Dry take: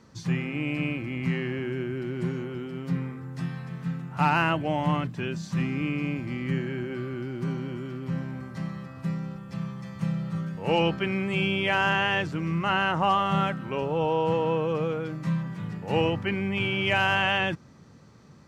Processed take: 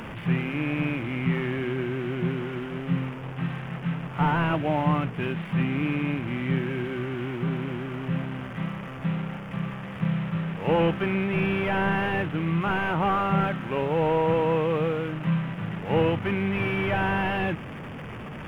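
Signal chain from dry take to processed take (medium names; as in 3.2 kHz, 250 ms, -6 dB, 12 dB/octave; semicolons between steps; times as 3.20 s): one-bit delta coder 16 kbps, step -32.5 dBFS; crossover distortion -56.5 dBFS; trim +2.5 dB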